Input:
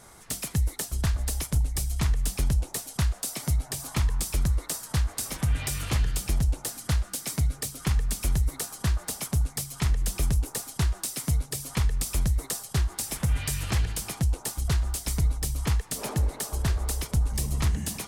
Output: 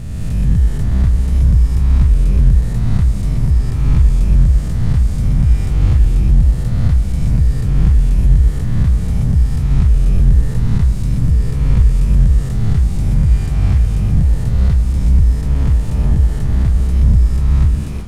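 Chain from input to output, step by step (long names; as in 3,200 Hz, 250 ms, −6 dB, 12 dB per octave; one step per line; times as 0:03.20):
peak hold with a rise ahead of every peak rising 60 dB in 2.01 s
RIAA equalisation playback
comb and all-pass reverb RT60 4.7 s, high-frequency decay 0.9×, pre-delay 95 ms, DRR 8 dB
level −4 dB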